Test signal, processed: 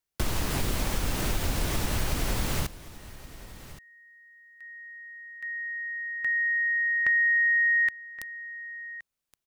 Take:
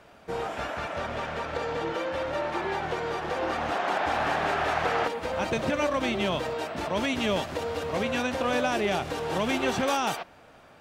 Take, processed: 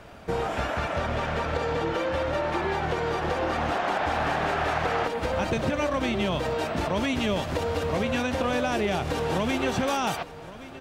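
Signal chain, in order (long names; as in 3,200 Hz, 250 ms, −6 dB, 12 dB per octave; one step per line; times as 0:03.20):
low-shelf EQ 150 Hz +9.5 dB
downward compressor 3 to 1, threshold −30 dBFS
single-tap delay 1,121 ms −17 dB
level +5.5 dB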